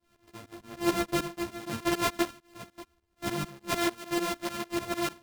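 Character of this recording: a buzz of ramps at a fixed pitch in blocks of 128 samples; tremolo saw up 6.7 Hz, depth 95%; a shimmering, thickened sound

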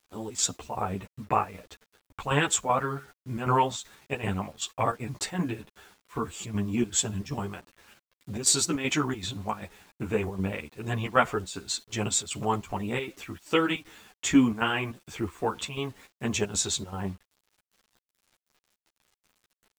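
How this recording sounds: chopped level 2.6 Hz, depth 65%, duty 75%; a quantiser's noise floor 10-bit, dither none; a shimmering, thickened sound

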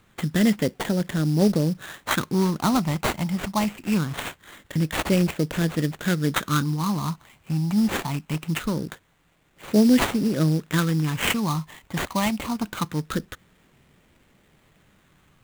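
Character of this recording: phasing stages 8, 0.23 Hz, lowest notch 440–1100 Hz; aliases and images of a low sample rate 5.2 kHz, jitter 20%

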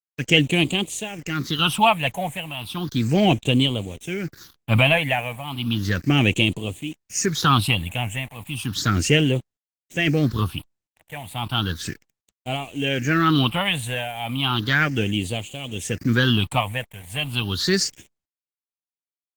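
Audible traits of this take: tremolo triangle 0.69 Hz, depth 85%; a quantiser's noise floor 8-bit, dither none; phasing stages 6, 0.34 Hz, lowest notch 340–1500 Hz; Opus

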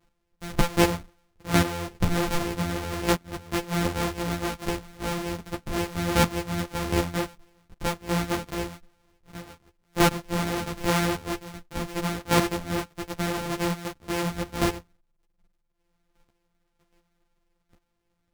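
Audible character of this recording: a buzz of ramps at a fixed pitch in blocks of 256 samples; chopped level 1.3 Hz, depth 65%, duty 10%; a shimmering, thickened sound

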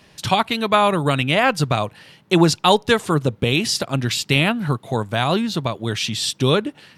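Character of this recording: noise floor -53 dBFS; spectral tilt -4.5 dB/octave

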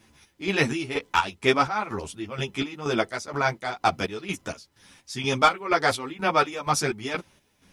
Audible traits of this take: chopped level 2.1 Hz, depth 65%, duty 50%; a quantiser's noise floor 12-bit, dither none; a shimmering, thickened sound

